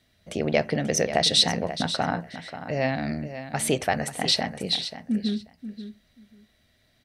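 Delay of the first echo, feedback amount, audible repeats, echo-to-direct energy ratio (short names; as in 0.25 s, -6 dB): 0.536 s, 16%, 2, -11.5 dB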